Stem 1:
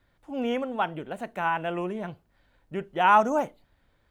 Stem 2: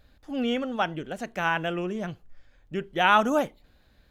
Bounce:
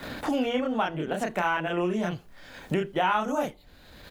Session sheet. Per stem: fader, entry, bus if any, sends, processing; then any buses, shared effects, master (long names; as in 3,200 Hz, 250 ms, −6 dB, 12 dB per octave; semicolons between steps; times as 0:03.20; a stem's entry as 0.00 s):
−1.5 dB, 0.00 s, no send, no processing
−3.0 dB, 29 ms, polarity flipped, no send, transient designer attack −5 dB, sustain +2 dB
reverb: not used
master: multiband upward and downward compressor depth 100%